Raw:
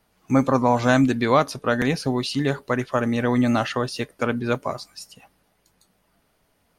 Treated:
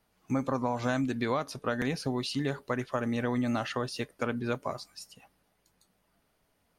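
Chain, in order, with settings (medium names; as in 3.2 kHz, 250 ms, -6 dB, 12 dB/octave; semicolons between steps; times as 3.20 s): compression, threshold -19 dBFS, peak gain reduction 7.5 dB; trim -6.5 dB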